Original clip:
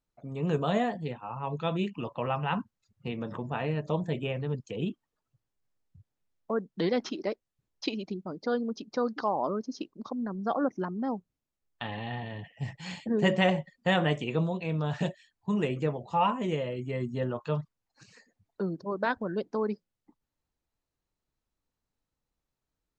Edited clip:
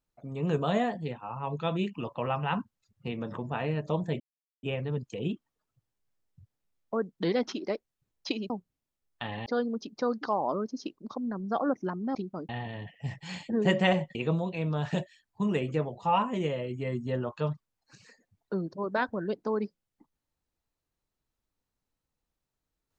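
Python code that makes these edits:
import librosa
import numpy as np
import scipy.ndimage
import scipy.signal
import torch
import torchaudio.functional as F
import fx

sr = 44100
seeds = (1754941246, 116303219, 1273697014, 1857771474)

y = fx.edit(x, sr, fx.insert_silence(at_s=4.2, length_s=0.43),
    fx.swap(start_s=8.07, length_s=0.34, other_s=11.1, other_length_s=0.96),
    fx.cut(start_s=13.72, length_s=0.51), tone=tone)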